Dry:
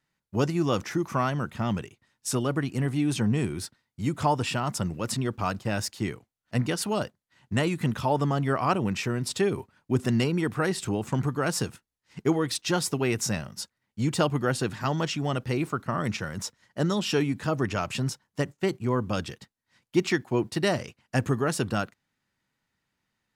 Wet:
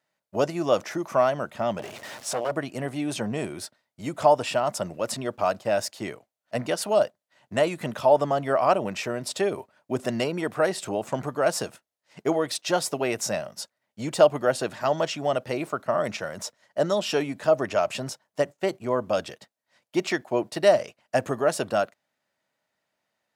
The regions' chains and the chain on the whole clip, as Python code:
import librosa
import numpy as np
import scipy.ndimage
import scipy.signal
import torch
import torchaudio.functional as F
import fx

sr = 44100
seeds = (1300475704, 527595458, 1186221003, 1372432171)

y = fx.chain(x, sr, fx.zero_step(step_db=-32.5),
    fx.high_shelf(hz=11000.0, db=-11.0),
    fx.transformer_sat(knee_hz=930.0), at=(1.79, 2.51))
y = fx.highpass(y, sr, hz=360.0, slope=6)
y = fx.peak_eq(y, sr, hz=620.0, db=14.5, octaves=0.52)